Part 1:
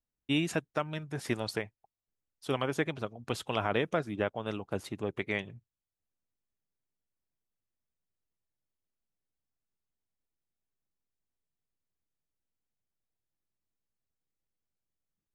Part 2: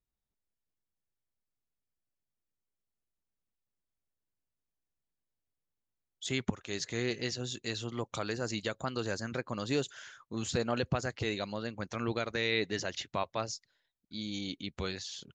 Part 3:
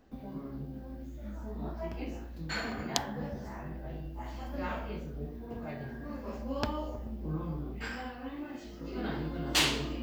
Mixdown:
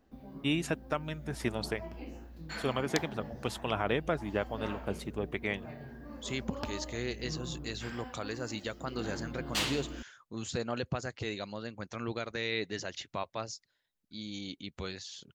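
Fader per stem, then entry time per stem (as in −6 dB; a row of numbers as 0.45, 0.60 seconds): −1.0, −3.0, −5.5 decibels; 0.15, 0.00, 0.00 seconds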